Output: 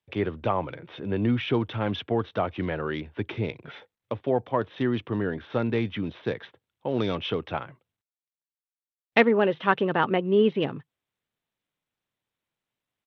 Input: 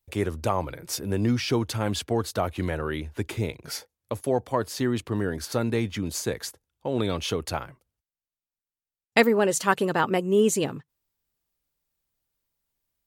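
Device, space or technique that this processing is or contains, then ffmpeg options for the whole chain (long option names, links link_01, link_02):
Bluetooth headset: -af "highpass=frequency=100:width=0.5412,highpass=frequency=100:width=1.3066,aresample=8000,aresample=44100" -ar 32000 -c:a sbc -b:a 64k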